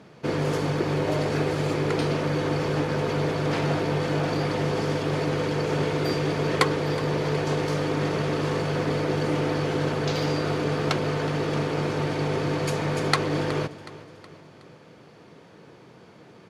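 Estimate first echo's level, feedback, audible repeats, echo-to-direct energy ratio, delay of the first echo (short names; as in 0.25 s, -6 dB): -17.0 dB, 49%, 3, -16.0 dB, 0.369 s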